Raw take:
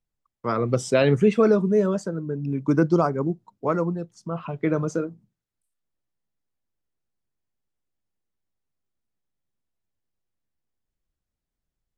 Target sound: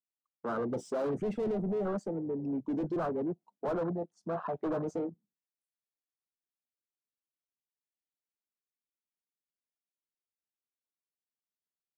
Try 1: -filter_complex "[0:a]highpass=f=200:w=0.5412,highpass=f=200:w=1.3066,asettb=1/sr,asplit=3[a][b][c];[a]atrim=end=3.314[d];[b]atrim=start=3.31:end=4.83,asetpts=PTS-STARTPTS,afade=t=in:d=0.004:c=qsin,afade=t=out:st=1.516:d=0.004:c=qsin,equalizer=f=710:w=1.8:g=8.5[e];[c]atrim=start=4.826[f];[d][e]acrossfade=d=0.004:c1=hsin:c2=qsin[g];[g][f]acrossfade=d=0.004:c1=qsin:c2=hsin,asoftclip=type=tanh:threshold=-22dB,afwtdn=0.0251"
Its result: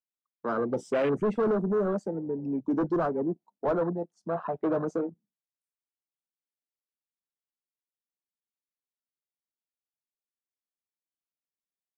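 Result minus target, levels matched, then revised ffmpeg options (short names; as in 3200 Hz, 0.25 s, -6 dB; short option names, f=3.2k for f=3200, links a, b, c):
soft clip: distortion -4 dB
-filter_complex "[0:a]highpass=f=200:w=0.5412,highpass=f=200:w=1.3066,asettb=1/sr,asplit=3[a][b][c];[a]atrim=end=3.314[d];[b]atrim=start=3.31:end=4.83,asetpts=PTS-STARTPTS,afade=t=in:d=0.004:c=qsin,afade=t=out:st=1.516:d=0.004:c=qsin,equalizer=f=710:w=1.8:g=8.5[e];[c]atrim=start=4.826[f];[d][e]acrossfade=d=0.004:c1=hsin:c2=qsin[g];[g][f]acrossfade=d=0.004:c1=qsin:c2=hsin,asoftclip=type=tanh:threshold=-29.5dB,afwtdn=0.0251"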